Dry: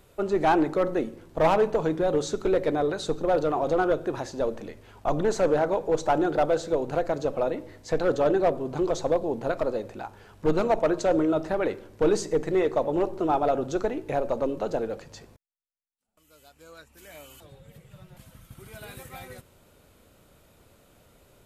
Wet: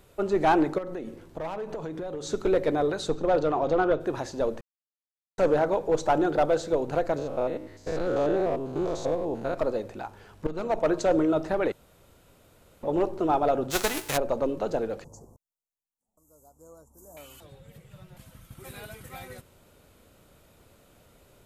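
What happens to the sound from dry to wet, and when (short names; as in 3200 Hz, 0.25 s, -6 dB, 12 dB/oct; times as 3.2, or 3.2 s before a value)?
0.78–2.33 compressor 8:1, threshold -31 dBFS
3.08–3.99 LPF 9600 Hz -> 4000 Hz
4.61–5.38 mute
7.18–9.58 stepped spectrum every 0.1 s
10.47–10.91 fade in, from -16 dB
11.72–12.83 room tone
13.7–14.16 spectral whitening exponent 0.3
15.04–17.17 Chebyshev band-stop 1000–6500 Hz, order 3
18.64–19.04 reverse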